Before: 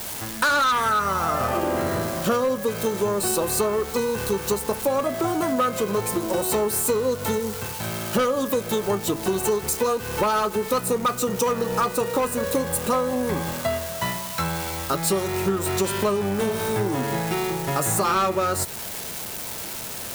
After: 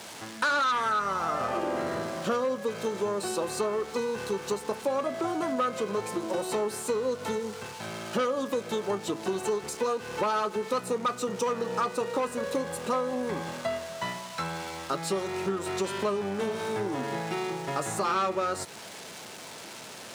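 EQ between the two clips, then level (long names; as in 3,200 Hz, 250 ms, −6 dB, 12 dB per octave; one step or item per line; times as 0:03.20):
Bessel high-pass filter 200 Hz, order 2
high-frequency loss of the air 92 metres
high-shelf EQ 8,400 Hz +7.5 dB
−5.0 dB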